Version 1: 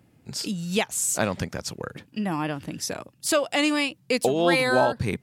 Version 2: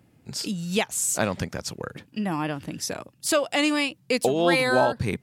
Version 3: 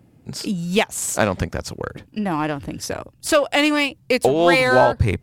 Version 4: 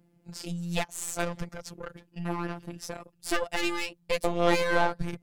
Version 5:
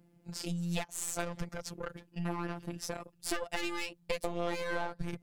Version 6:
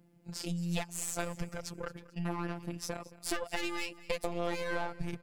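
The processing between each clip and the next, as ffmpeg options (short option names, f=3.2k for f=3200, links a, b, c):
-af anull
-filter_complex "[0:a]asubboost=boost=9.5:cutoff=60,asplit=2[a][b];[b]adynamicsmooth=sensitivity=3:basefreq=1.2k,volume=0dB[c];[a][c]amix=inputs=2:normalize=0,volume=1dB"
-af "aeval=exprs='0.891*(cos(1*acos(clip(val(0)/0.891,-1,1)))-cos(1*PI/2))+0.141*(cos(6*acos(clip(val(0)/0.891,-1,1)))-cos(6*PI/2))':c=same,afftfilt=real='hypot(re,im)*cos(PI*b)':imag='0':win_size=1024:overlap=0.75,volume=-8dB"
-af "acompressor=threshold=-30dB:ratio=5"
-af "aecho=1:1:221|442|663:0.106|0.0424|0.0169"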